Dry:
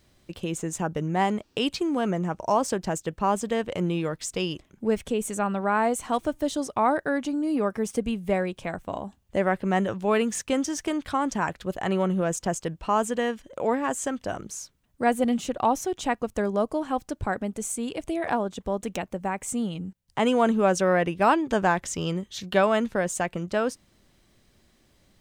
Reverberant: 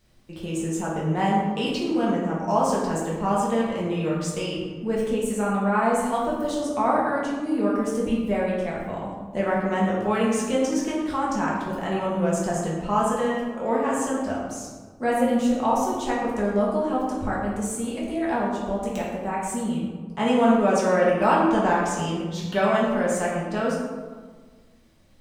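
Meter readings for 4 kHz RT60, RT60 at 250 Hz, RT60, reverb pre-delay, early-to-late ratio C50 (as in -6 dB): 0.75 s, 2.0 s, 1.6 s, 4 ms, 0.5 dB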